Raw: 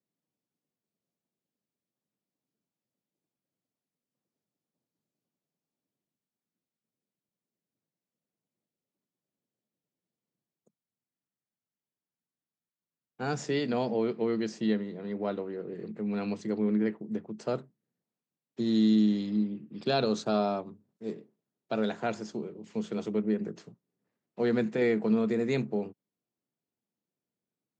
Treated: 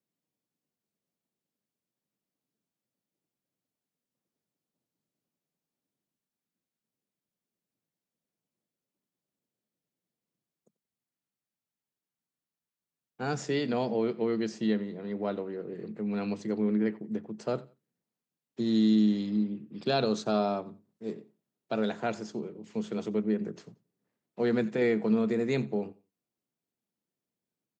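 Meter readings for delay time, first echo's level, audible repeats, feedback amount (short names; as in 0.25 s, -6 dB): 89 ms, -22.0 dB, 2, 23%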